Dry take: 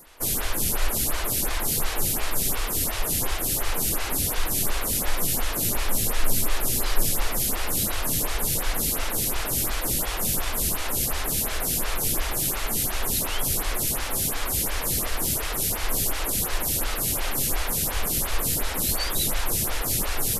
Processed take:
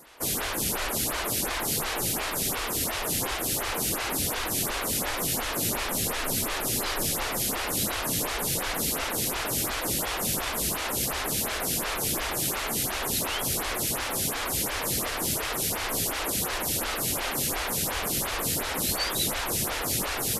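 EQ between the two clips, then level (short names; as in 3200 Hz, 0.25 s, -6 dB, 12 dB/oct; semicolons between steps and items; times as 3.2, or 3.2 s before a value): HPF 160 Hz 6 dB/oct; high shelf 9200 Hz -8 dB; +1.5 dB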